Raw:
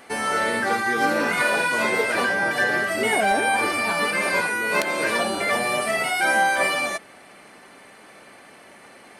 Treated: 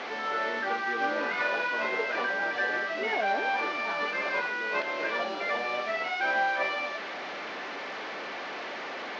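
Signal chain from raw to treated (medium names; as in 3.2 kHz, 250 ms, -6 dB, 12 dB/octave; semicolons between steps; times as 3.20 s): one-bit delta coder 32 kbps, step -22.5 dBFS; band-pass 320–3100 Hz; trim -7 dB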